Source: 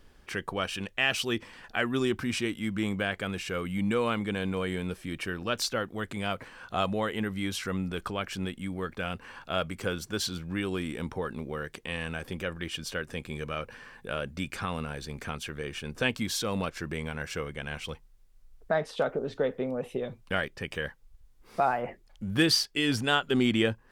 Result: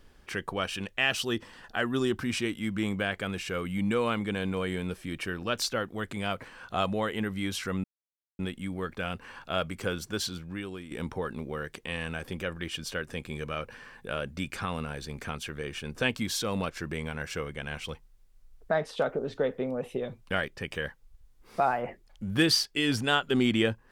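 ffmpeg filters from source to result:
ffmpeg -i in.wav -filter_complex "[0:a]asettb=1/sr,asplit=3[link_01][link_02][link_03];[link_01]atrim=end=1.124[link_04];[link_02]atrim=start=1.12:end=2.21,asetpts=PTS-STARTPTS,afade=type=in:duration=0.004:curve=qsin,afade=type=out:start_time=1.086:duration=0.004:curve=qsin,equalizer=frequency=2300:width=6.2:gain=-9.5[link_05];[link_03]atrim=start=2.206[link_06];[link_04][link_05]acrossfade=duration=0.004:curve1=hsin:curve2=qsin[link_07];[link_07][link_06]acrossfade=duration=0.004:curve1=qsin:curve2=hsin,asplit=4[link_08][link_09][link_10][link_11];[link_08]atrim=end=7.84,asetpts=PTS-STARTPTS,afade=type=out:start_time=7.836:duration=0.004:curve=hsin[link_12];[link_09]atrim=start=7.84:end=8.39,asetpts=PTS-STARTPTS,volume=0[link_13];[link_10]atrim=start=8.39:end=10.91,asetpts=PTS-STARTPTS,afade=type=in:duration=0.004:curve=hsin,afade=type=out:start_time=1.72:duration=0.8:silence=0.237137[link_14];[link_11]atrim=start=10.91,asetpts=PTS-STARTPTS,afade=type=in:duration=0.004:curve=hsin:silence=0.237137[link_15];[link_12][link_13][link_14][link_15]concat=n=4:v=0:a=1" out.wav

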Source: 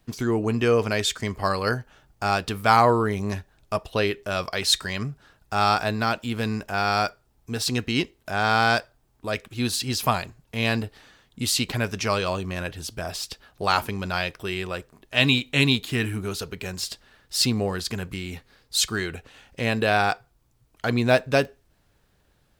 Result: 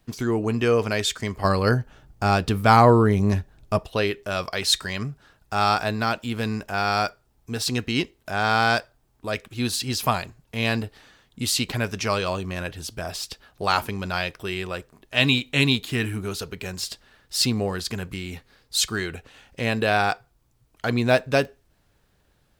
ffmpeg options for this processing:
ffmpeg -i in.wav -filter_complex "[0:a]asettb=1/sr,asplit=3[link_01][link_02][link_03];[link_01]atrim=end=1.444[link_04];[link_02]atrim=start=1.44:end=3.85,asetpts=PTS-STARTPTS,afade=type=in:duration=0.004:curve=qsin,afade=type=out:start_time=2.406:duration=0.004:curve=qsin,lowshelf=frequency=420:gain=9[link_05];[link_03]atrim=start=3.846[link_06];[link_04][link_05]acrossfade=duration=0.004:curve1=hsin:curve2=qsin[link_07];[link_07][link_06]acrossfade=duration=0.004:curve1=qsin:curve2=hsin" out.wav

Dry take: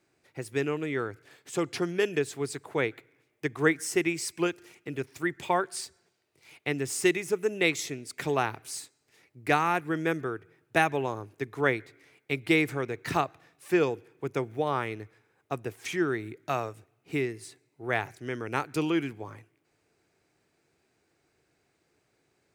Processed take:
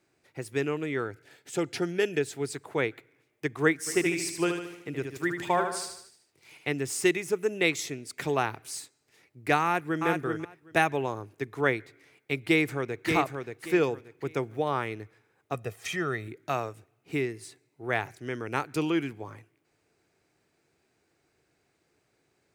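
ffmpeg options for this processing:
ffmpeg -i in.wav -filter_complex "[0:a]asettb=1/sr,asplit=3[link_01][link_02][link_03];[link_01]atrim=end=1.044[link_04];[link_02]atrim=start=1.04:end=2.53,asetpts=PTS-STARTPTS,afade=type=in:duration=0.004:curve=qsin,afade=type=out:start_time=1.486:duration=0.004:curve=qsin,asuperstop=centerf=1100:order=4:qfactor=5.3[link_05];[link_03]atrim=start=2.526[link_06];[link_04][link_05]acrossfade=duration=0.004:curve1=hsin:curve2=qsin[link_07];[link_07][link_06]acrossfade=duration=0.004:curve1=qsin:curve2=hsin,asplit=3[link_08][link_09][link_10];[link_08]afade=type=out:start_time=3.86:duration=0.02[link_11];[link_09]aecho=1:1:75|150|225|300|375|450:0.501|0.256|0.13|0.0665|0.0339|0.0173,afade=type=in:start_time=3.86:duration=0.02,afade=type=out:start_time=6.71:duration=0.02[link_12];[link_10]afade=type=in:start_time=6.71:duration=0.02[link_13];[link_11][link_12][link_13]amix=inputs=3:normalize=0,asplit=2[link_14][link_15];[link_15]afade=type=in:start_time=9.63:duration=0.01,afade=type=out:start_time=10.06:duration=0.01,aecho=0:1:380|760:0.630957|0.0630957[link_16];[link_14][link_16]amix=inputs=2:normalize=0,asplit=2[link_17][link_18];[link_18]afade=type=in:start_time=12.46:duration=0.01,afade=type=out:start_time=13.07:duration=0.01,aecho=0:1:580|1160|1740:0.562341|0.140585|0.0351463[link_19];[link_17][link_19]amix=inputs=2:normalize=0,asettb=1/sr,asplit=3[link_20][link_21][link_22];[link_20]atrim=end=15.544[link_23];[link_21]atrim=start=15.54:end=16.28,asetpts=PTS-STARTPTS,afade=type=in:duration=0.004:curve=qsin,afade=type=out:start_time=0.736:duration=0.004:curve=qsin,aecho=1:1:1.6:0.6,atrim=end_sample=32634[link_24];[link_22]atrim=start=16.276[link_25];[link_23][link_24]acrossfade=duration=0.004:curve1=hsin:curve2=qsin[link_26];[link_26][link_25]acrossfade=duration=0.004:curve1=qsin:curve2=hsin" out.wav

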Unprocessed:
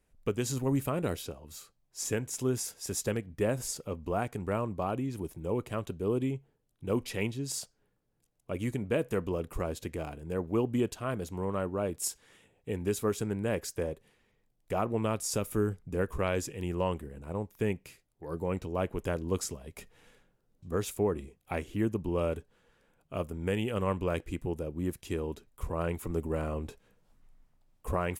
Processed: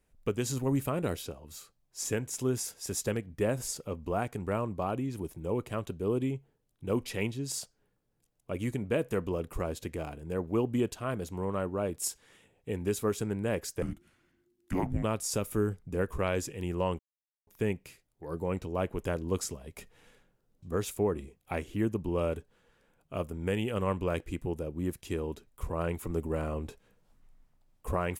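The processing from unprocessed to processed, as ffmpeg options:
ffmpeg -i in.wav -filter_complex "[0:a]asettb=1/sr,asplit=3[link_01][link_02][link_03];[link_01]atrim=end=13.824[link_04];[link_02]atrim=start=13.82:end=15.03,asetpts=PTS-STARTPTS,afade=type=in:duration=0.004:curve=qsin,afade=type=out:start_time=1.206:duration=0.004:curve=qsin,afreqshift=-370[link_05];[link_03]atrim=start=15.026[link_06];[link_04][link_05]acrossfade=duration=0.004:curve1=hsin:curve2=qsin[link_07];[link_07][link_06]acrossfade=duration=0.004:curve1=qsin:curve2=hsin,asplit=3[link_08][link_09][link_10];[link_08]atrim=end=16.99,asetpts=PTS-STARTPTS,afade=type=out:start_time=16.986:duration=0.004:curve=hsin[link_11];[link_09]atrim=start=16.99:end=17.47,asetpts=PTS-STARTPTS,volume=0[link_12];[link_10]atrim=start=17.47,asetpts=PTS-STARTPTS,afade=type=in:duration=0.004:curve=hsin[link_13];[link_11][link_12][link_13]concat=n=3:v=0:a=1" out.wav

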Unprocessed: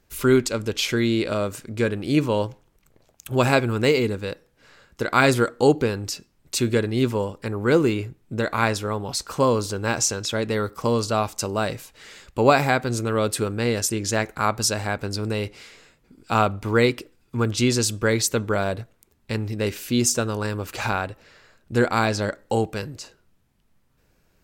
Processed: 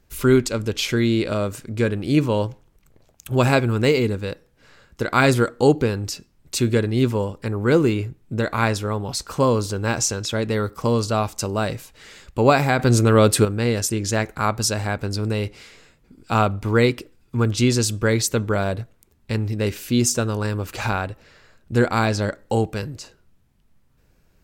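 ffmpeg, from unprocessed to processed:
ffmpeg -i in.wav -filter_complex "[0:a]asplit=3[link_01][link_02][link_03];[link_01]atrim=end=12.792[link_04];[link_02]atrim=start=12.788:end=13.452,asetpts=PTS-STARTPTS,volume=6.5dB[link_05];[link_03]atrim=start=13.448[link_06];[link_04][link_05]acrossfade=duration=0.004:curve1=hsin:curve2=hsin[link_07];[link_07][link_06]acrossfade=duration=0.004:curve1=hsin:curve2=hsin,lowshelf=frequency=190:gain=6" out.wav

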